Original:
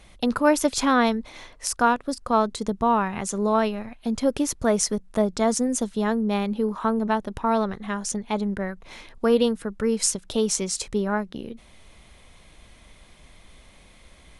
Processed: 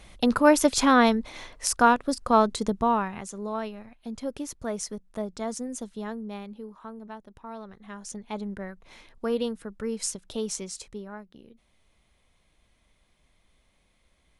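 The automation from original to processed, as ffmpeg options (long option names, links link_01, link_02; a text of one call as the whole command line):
ffmpeg -i in.wav -af "volume=11dB,afade=type=out:start_time=2.55:duration=0.75:silence=0.266073,afade=type=out:start_time=5.98:duration=0.78:silence=0.421697,afade=type=in:start_time=7.62:duration=0.75:silence=0.316228,afade=type=out:start_time=10.52:duration=0.57:silence=0.398107" out.wav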